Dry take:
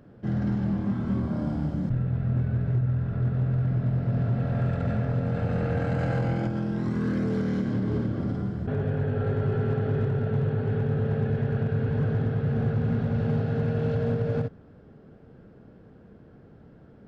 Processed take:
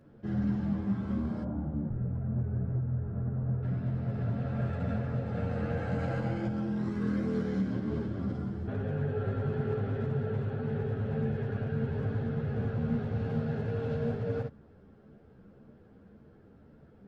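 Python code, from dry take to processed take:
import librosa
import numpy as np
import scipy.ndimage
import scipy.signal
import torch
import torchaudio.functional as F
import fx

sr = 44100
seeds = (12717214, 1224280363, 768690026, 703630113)

y = fx.lowpass(x, sr, hz=1100.0, slope=12, at=(1.43, 3.63))
y = fx.ensemble(y, sr)
y = y * 10.0 ** (-2.0 / 20.0)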